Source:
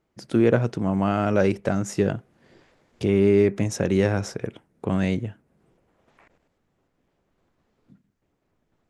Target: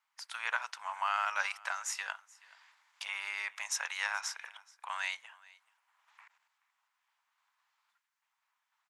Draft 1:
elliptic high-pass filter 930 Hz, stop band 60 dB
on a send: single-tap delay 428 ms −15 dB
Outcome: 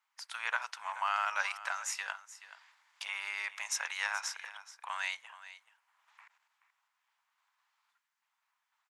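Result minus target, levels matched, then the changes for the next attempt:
echo-to-direct +8 dB
change: single-tap delay 428 ms −23 dB

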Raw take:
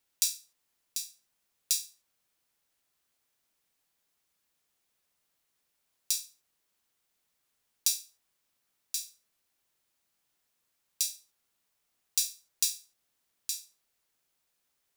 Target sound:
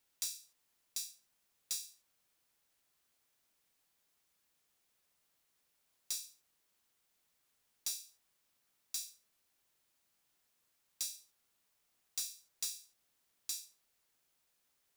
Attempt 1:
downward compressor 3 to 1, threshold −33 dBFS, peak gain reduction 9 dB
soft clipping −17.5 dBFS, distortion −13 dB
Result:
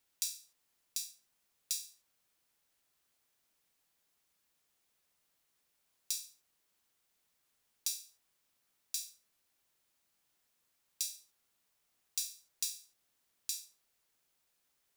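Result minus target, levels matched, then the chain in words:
soft clipping: distortion −6 dB
downward compressor 3 to 1, threshold −33 dBFS, peak gain reduction 9 dB
soft clipping −28.5 dBFS, distortion −7 dB

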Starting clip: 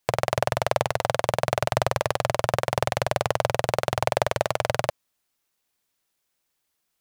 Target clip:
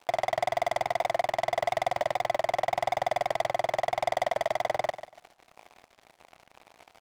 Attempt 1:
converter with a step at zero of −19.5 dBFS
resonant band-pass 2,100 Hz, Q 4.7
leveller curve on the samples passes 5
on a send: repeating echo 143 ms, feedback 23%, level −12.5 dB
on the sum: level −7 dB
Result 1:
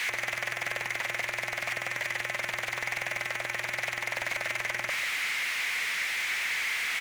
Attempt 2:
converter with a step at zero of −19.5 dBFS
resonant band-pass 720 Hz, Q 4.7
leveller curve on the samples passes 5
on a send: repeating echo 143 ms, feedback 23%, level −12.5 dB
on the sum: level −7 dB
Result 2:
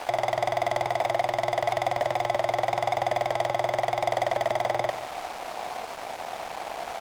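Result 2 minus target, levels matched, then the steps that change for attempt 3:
converter with a step at zero: distortion +8 dB
change: converter with a step at zero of −29.5 dBFS

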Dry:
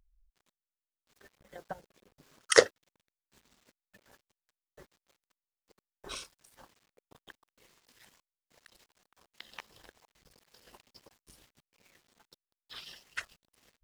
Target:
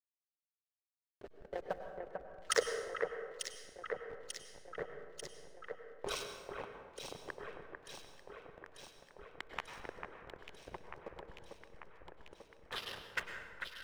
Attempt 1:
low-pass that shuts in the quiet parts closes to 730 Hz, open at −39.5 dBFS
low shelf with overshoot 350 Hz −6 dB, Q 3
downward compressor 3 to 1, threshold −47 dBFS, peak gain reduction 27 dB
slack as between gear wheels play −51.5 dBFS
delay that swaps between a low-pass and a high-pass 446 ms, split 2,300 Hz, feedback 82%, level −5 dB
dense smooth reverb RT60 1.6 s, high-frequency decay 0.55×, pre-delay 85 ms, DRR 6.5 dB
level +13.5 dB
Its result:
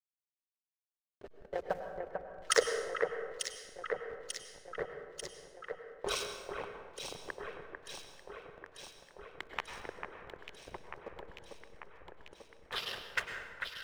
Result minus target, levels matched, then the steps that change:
downward compressor: peak gain reduction −4 dB
change: downward compressor 3 to 1, threshold −53 dBFS, peak gain reduction 31 dB

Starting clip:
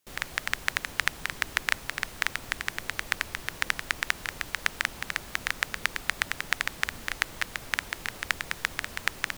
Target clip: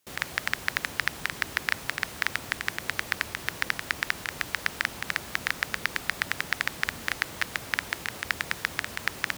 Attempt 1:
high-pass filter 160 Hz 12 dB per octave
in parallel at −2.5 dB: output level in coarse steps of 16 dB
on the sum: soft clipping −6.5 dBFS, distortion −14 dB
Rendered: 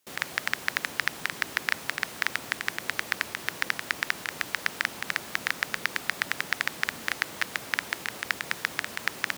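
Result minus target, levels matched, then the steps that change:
125 Hz band −5.0 dB
change: high-pass filter 70 Hz 12 dB per octave

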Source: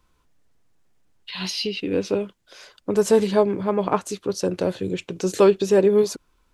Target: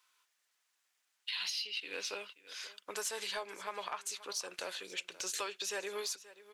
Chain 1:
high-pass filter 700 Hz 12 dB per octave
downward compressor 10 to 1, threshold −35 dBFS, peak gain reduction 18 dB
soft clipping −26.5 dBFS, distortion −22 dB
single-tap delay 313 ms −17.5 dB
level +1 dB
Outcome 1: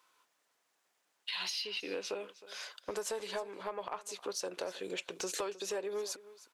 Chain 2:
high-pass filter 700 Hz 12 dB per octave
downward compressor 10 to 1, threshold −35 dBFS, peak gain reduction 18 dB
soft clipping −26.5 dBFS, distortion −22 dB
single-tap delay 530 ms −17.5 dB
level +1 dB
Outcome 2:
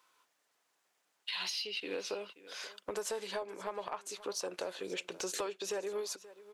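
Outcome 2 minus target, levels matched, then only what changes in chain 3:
500 Hz band +6.0 dB
change: high-pass filter 1,600 Hz 12 dB per octave

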